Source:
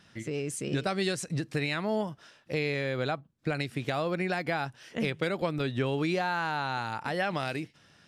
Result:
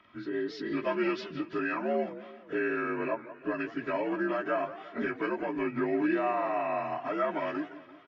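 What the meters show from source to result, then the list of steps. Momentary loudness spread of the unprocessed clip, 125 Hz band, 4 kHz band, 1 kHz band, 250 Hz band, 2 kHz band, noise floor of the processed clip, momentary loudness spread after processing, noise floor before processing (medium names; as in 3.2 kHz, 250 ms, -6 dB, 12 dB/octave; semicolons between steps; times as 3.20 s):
6 LU, -14.0 dB, -11.0 dB, 0.0 dB, +1.0 dB, -2.0 dB, -52 dBFS, 7 LU, -61 dBFS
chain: frequency axis rescaled in octaves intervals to 84%; tone controls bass -4 dB, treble -14 dB; comb 3.1 ms, depth 78%; modulated delay 171 ms, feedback 51%, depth 217 cents, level -14.5 dB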